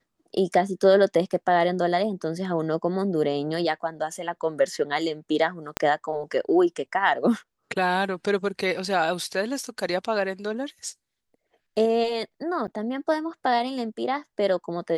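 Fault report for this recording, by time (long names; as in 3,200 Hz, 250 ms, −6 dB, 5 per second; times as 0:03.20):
0:05.77: click −8 dBFS
0:12.67–0:12.68: drop-out 9 ms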